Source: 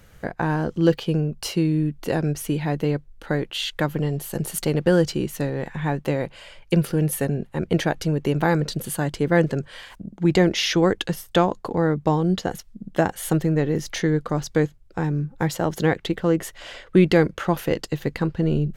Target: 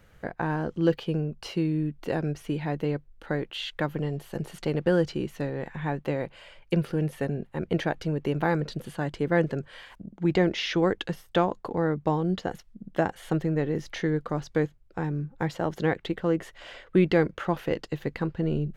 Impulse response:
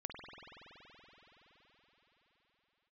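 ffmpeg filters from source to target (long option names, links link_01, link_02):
-filter_complex "[0:a]acrossover=split=5900[link_01][link_02];[link_02]acompressor=threshold=-43dB:ratio=4:attack=1:release=60[link_03];[link_01][link_03]amix=inputs=2:normalize=0,bass=frequency=250:gain=-2,treble=frequency=4000:gain=-7,volume=-4.5dB"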